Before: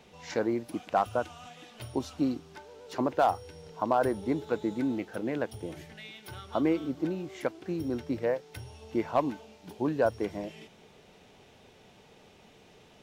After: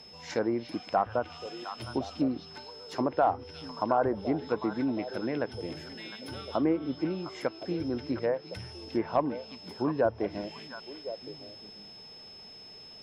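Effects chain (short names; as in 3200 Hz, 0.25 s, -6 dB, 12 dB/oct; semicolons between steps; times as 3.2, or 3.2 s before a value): whine 5200 Hz -49 dBFS; delay with a stepping band-pass 0.354 s, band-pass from 3400 Hz, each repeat -1.4 oct, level -5 dB; treble ducked by the level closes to 1700 Hz, closed at -23 dBFS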